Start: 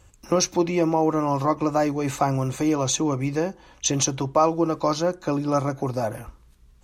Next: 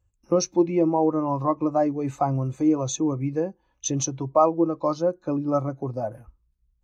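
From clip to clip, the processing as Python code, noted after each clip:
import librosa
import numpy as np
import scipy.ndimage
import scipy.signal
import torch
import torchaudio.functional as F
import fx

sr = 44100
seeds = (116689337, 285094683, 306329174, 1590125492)

y = fx.spectral_expand(x, sr, expansion=1.5)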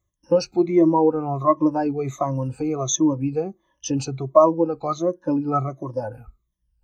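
y = fx.spec_ripple(x, sr, per_octave=1.2, drift_hz=-1.4, depth_db=20)
y = F.gain(torch.from_numpy(y), -1.5).numpy()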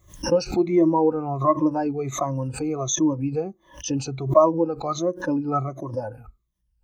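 y = fx.pre_swell(x, sr, db_per_s=140.0)
y = F.gain(torch.from_numpy(y), -2.0).numpy()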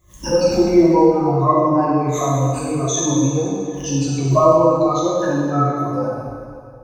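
y = fx.rev_plate(x, sr, seeds[0], rt60_s=2.2, hf_ratio=0.85, predelay_ms=0, drr_db=-6.5)
y = F.gain(torch.from_numpy(y), -1.0).numpy()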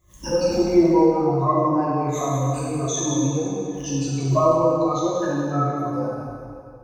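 y = x + 10.0 ** (-8.0 / 20.0) * np.pad(x, (int(180 * sr / 1000.0), 0))[:len(x)]
y = F.gain(torch.from_numpy(y), -5.0).numpy()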